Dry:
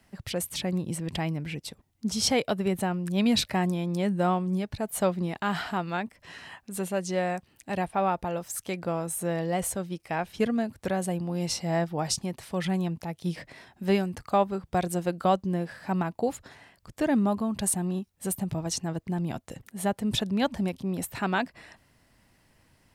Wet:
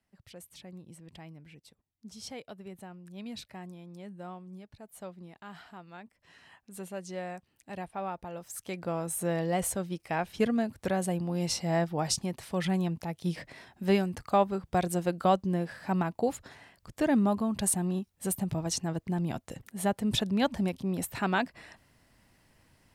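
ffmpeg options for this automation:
-af "volume=0.891,afade=t=in:st=5.88:d=0.91:silence=0.398107,afade=t=in:st=8.31:d=0.92:silence=0.354813"

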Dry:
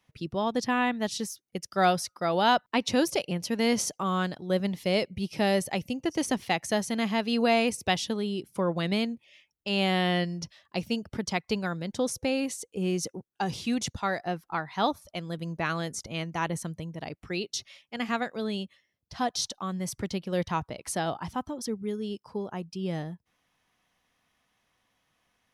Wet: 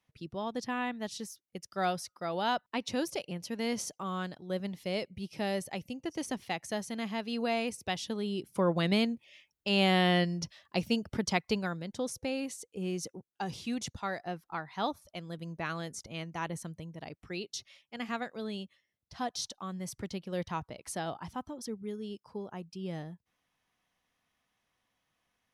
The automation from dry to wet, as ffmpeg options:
-af "afade=t=in:st=7.95:d=0.73:silence=0.398107,afade=t=out:st=11.34:d=0.55:silence=0.473151"

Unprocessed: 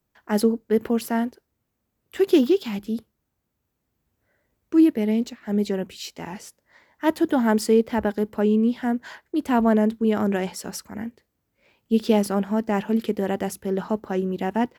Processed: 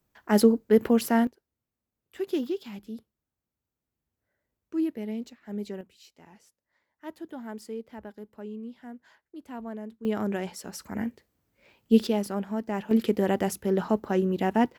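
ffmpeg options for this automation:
-af "asetnsamples=n=441:p=0,asendcmd='1.27 volume volume -11.5dB;5.81 volume volume -19dB;10.05 volume volume -6.5dB;10.8 volume volume 1dB;12.07 volume volume -7.5dB;12.91 volume volume 0dB',volume=1.12"

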